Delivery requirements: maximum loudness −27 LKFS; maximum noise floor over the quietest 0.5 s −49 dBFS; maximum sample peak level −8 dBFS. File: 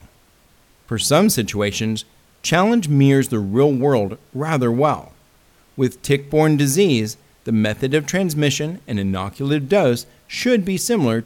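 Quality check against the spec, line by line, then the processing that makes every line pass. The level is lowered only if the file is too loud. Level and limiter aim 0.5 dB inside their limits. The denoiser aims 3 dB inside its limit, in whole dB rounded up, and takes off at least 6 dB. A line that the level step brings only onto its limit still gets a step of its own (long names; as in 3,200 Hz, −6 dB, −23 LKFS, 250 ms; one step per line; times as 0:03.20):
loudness −18.5 LKFS: out of spec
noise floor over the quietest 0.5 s −54 dBFS: in spec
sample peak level −2.5 dBFS: out of spec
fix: level −9 dB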